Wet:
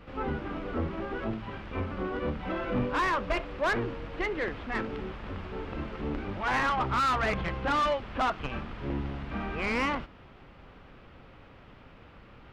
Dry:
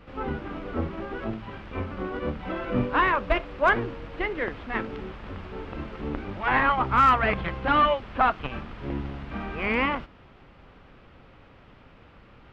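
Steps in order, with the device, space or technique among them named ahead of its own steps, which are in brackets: saturation between pre-emphasis and de-emphasis (high shelf 3500 Hz +8 dB; soft clip -22.5 dBFS, distortion -8 dB; high shelf 3500 Hz -8 dB)

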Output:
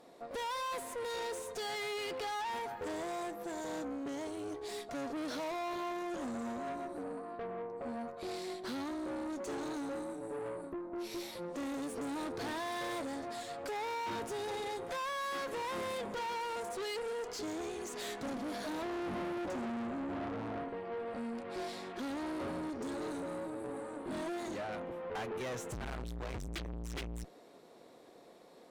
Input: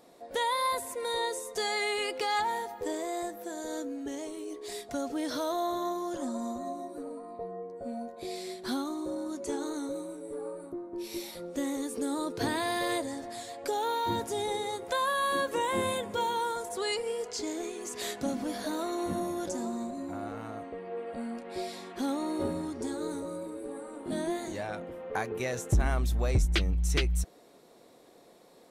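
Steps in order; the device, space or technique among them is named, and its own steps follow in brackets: 18.82–20.69 tilt shelf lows +6 dB, about 1400 Hz; tube preamp driven hard (tube stage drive 40 dB, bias 0.7; low shelf 98 Hz -7 dB; high shelf 6300 Hz -9 dB); gain +4 dB

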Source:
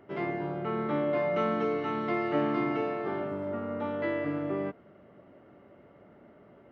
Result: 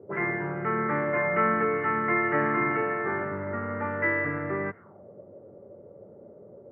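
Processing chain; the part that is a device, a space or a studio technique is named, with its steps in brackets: envelope filter bass rig (envelope low-pass 450–1900 Hz up, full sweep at -33.5 dBFS; speaker cabinet 87–2200 Hz, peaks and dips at 98 Hz +7 dB, 280 Hz -8 dB, 660 Hz -8 dB); gain +3.5 dB

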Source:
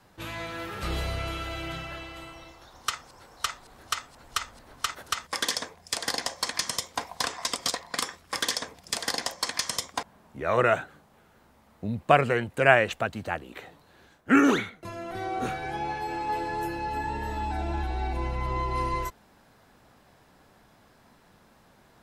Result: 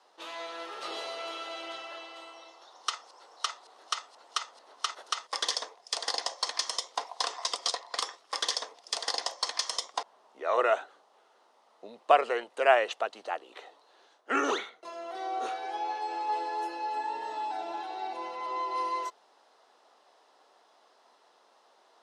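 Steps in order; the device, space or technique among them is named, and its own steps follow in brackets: phone speaker on a table (speaker cabinet 440–8300 Hz, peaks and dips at 540 Hz -3 dB, 1600 Hz -8 dB, 2300 Hz -8 dB, 7500 Hz -7 dB)

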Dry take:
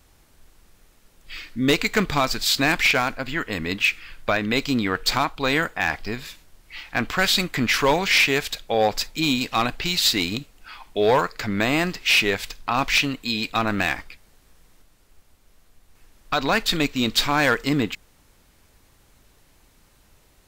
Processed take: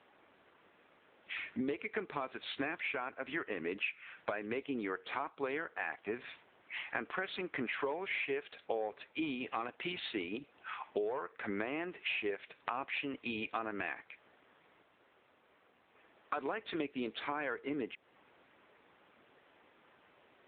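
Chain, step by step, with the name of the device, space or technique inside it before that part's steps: dynamic EQ 390 Hz, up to +8 dB, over -39 dBFS, Q 2.4; voicemail (BPF 330–2700 Hz; compressor 8:1, threshold -35 dBFS, peak gain reduction 23 dB; gain +1 dB; AMR-NB 7.95 kbps 8000 Hz)

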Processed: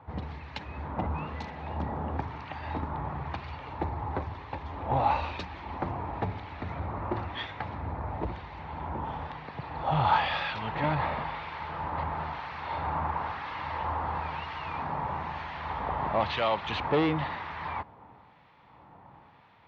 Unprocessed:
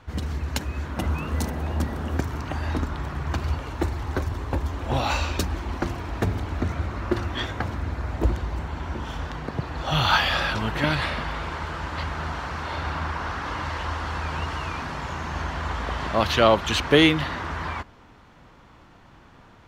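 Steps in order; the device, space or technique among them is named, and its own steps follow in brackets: guitar amplifier with harmonic tremolo (harmonic tremolo 1 Hz, crossover 1600 Hz; soft clip -19 dBFS, distortion -12 dB; speaker cabinet 99–3500 Hz, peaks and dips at 240 Hz -5 dB, 350 Hz -5 dB, 860 Hz +8 dB, 1500 Hz -6 dB, 3000 Hz -5 dB)

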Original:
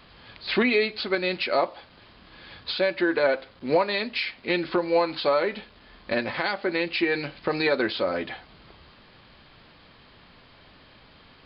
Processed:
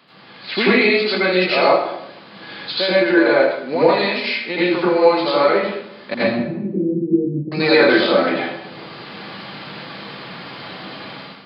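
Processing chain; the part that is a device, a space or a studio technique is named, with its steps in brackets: 6.14–7.52 inverse Chebyshev low-pass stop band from 1200 Hz, stop band 70 dB; far laptop microphone (reverb RT60 0.80 s, pre-delay 78 ms, DRR -8.5 dB; HPF 140 Hz 24 dB/oct; AGC gain up to 12.5 dB); gain -1 dB

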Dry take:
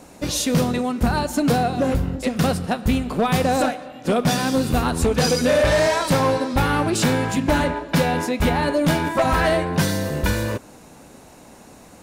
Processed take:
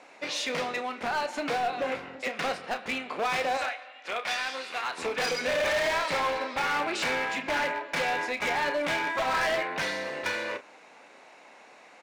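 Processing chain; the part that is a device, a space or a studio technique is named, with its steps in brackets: 3.57–4.98 HPF 1300 Hz 6 dB/oct; megaphone (BPF 600–4000 Hz; bell 2200 Hz +8 dB 0.56 oct; hard clip -21 dBFS, distortion -9 dB; doubler 31 ms -10.5 dB); gain -3.5 dB

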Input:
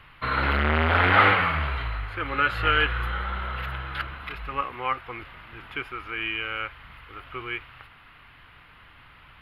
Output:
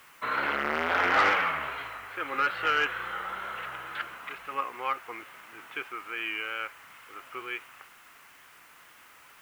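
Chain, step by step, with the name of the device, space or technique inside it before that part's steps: tape answering machine (BPF 320–3400 Hz; soft clip -12.5 dBFS, distortion -17 dB; wow and flutter; white noise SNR 28 dB); gain -2.5 dB

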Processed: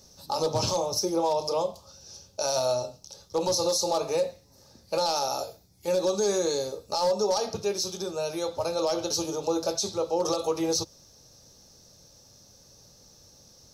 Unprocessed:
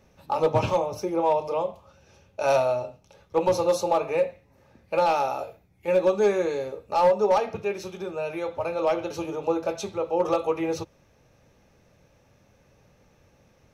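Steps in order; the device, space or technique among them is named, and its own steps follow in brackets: over-bright horn tweeter (resonant high shelf 3400 Hz +13 dB, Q 3; limiter -17 dBFS, peak gain reduction 11.5 dB)

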